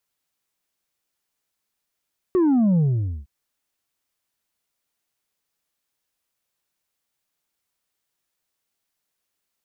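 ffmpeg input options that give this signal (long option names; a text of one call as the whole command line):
ffmpeg -f lavfi -i "aevalsrc='0.168*clip((0.91-t)/0.48,0,1)*tanh(1.5*sin(2*PI*380*0.91/log(65/380)*(exp(log(65/380)*t/0.91)-1)))/tanh(1.5)':duration=0.91:sample_rate=44100" out.wav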